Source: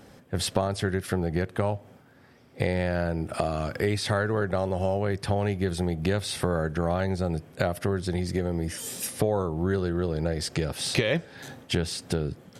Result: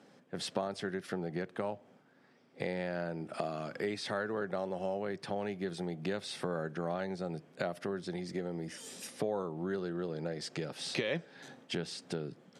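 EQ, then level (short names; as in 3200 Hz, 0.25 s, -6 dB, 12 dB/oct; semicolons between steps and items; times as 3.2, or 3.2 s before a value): HPF 160 Hz 24 dB/oct; LPF 7300 Hz 12 dB/oct; -8.5 dB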